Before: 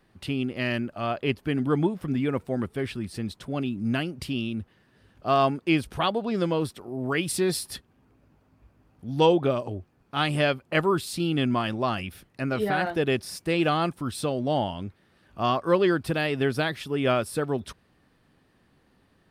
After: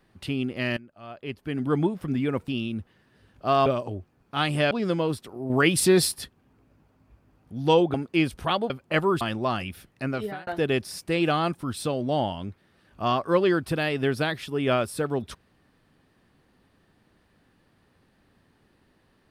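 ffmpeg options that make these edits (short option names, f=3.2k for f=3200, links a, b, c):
-filter_complex "[0:a]asplit=11[a][b][c][d][e][f][g][h][i][j][k];[a]atrim=end=0.77,asetpts=PTS-STARTPTS,afade=t=out:st=0.766:d=0.004:c=hsin:silence=0.125893[l];[b]atrim=start=0.77:end=2.482,asetpts=PTS-STARTPTS,afade=t=in:d=0.97:c=qua:silence=0.125893[m];[c]atrim=start=4.288:end=5.472[n];[d]atrim=start=9.458:end=10.512[o];[e]atrim=start=6.228:end=7.022[p];[f]atrim=start=7.018:end=7.642,asetpts=PTS-STARTPTS,volume=6dB[q];[g]atrim=start=7.638:end=9.462[r];[h]atrim=start=5.468:end=6.232[s];[i]atrim=start=10.508:end=11.022[t];[j]atrim=start=11.588:end=12.85,asetpts=PTS-STARTPTS,afade=t=out:st=0.862:d=0.4[u];[k]atrim=start=12.85,asetpts=PTS-STARTPTS,afade=t=in:d=0.004:c=hsin[v];[l][m]concat=n=2:v=0:a=1[w];[w][n]acrossfade=d=0.004:c1=hsin:c2=hsin[x];[x][o]acrossfade=d=0.004:c1=hsin:c2=hsin[y];[y][p]acrossfade=d=0.004:c1=hsin:c2=hsin[z];[z][q]acrossfade=d=0.004:c1=hsin:c2=hsin[aa];[aa][r]acrossfade=d=0.004:c1=hsin:c2=hsin[ab];[ab][s]acrossfade=d=0.004:c1=hsin:c2=hsin[ac];[ac][t]acrossfade=d=0.004:c1=hsin:c2=hsin[ad];[u][v]concat=n=2:v=0:a=1[ae];[ad][ae]acrossfade=d=0.004:c1=hsin:c2=hsin"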